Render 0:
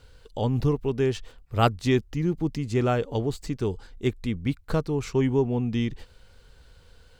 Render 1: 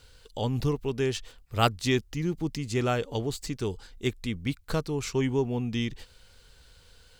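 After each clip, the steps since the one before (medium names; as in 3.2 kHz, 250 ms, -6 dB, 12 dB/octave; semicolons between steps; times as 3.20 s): treble shelf 2.1 kHz +10 dB; trim -4 dB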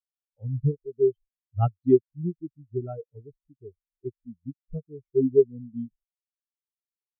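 spectral contrast expander 4:1; trim +1 dB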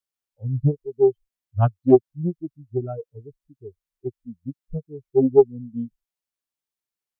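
loudspeaker Doppler distortion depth 0.27 ms; trim +4.5 dB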